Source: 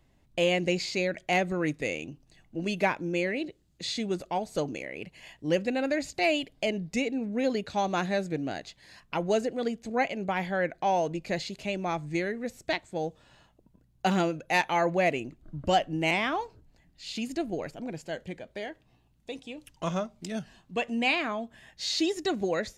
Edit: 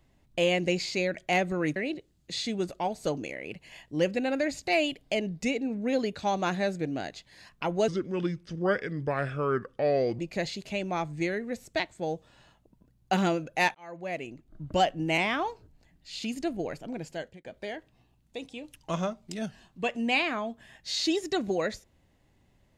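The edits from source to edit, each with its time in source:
1.76–3.27 cut
9.39–11.12 speed 75%
14.68–15.77 fade in
18.09–18.38 fade out

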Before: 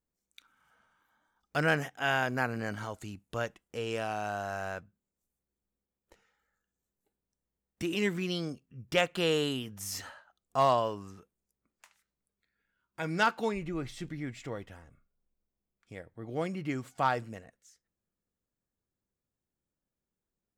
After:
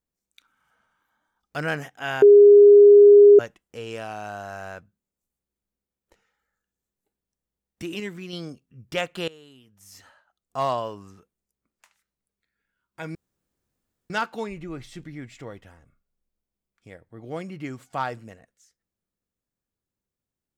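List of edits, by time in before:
2.22–3.39 bleep 409 Hz -7 dBFS
8–8.33 gain -4 dB
9.28–10.63 fade in quadratic, from -20.5 dB
13.15 insert room tone 0.95 s

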